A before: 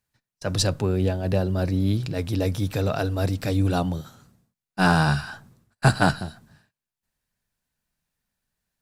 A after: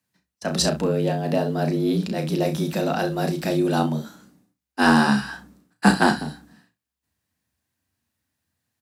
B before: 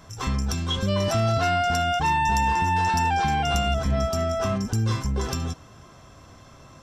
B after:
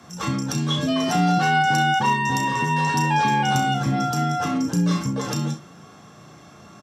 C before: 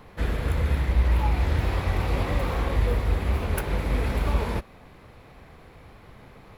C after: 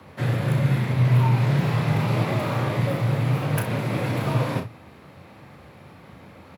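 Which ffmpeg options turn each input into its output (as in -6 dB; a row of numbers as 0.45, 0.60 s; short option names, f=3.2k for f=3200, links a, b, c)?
-af "bandreject=f=50:t=h:w=6,bandreject=f=100:t=h:w=6,afreqshift=65,aecho=1:1:34|65:0.447|0.188,volume=1.5dB"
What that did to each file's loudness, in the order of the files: +2.0, +2.5, +3.0 LU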